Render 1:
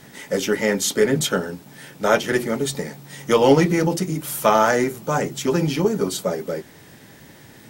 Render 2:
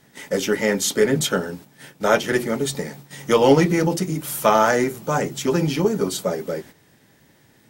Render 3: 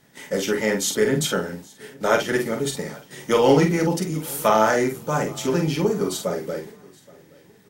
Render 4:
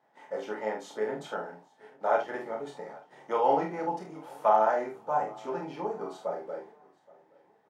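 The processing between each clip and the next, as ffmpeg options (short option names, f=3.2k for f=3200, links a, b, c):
-af "agate=range=-10dB:threshold=-40dB:ratio=16:detection=peak"
-filter_complex "[0:a]asplit=2[a][b];[b]adelay=46,volume=-6dB[c];[a][c]amix=inputs=2:normalize=0,aecho=1:1:824|1648:0.0631|0.0208,volume=-2.5dB"
-filter_complex "[0:a]bandpass=f=810:t=q:w=3.2:csg=0,asplit=2[a][b];[b]adelay=28,volume=-5dB[c];[a][c]amix=inputs=2:normalize=0"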